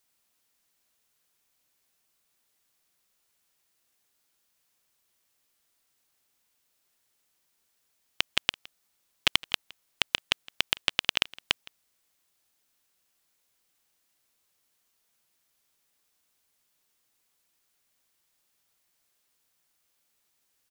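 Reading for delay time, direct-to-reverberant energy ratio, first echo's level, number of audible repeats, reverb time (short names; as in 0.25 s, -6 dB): 0.164 s, none, -22.5 dB, 1, none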